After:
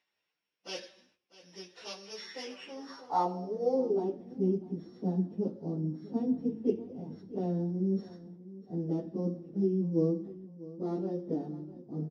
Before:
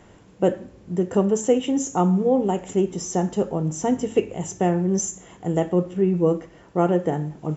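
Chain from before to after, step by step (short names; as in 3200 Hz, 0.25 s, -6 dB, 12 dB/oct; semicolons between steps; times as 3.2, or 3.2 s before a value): sample sorter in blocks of 8 samples; gate -40 dBFS, range -15 dB; dynamic EQ 3300 Hz, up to +6 dB, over -48 dBFS, Q 2.2; plain phase-vocoder stretch 1.6×; de-hum 115.7 Hz, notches 6; on a send: feedback echo 0.647 s, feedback 34%, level -17.5 dB; on the sum: downsampling 22050 Hz; band-pass sweep 2600 Hz -> 240 Hz, 2.11–4.3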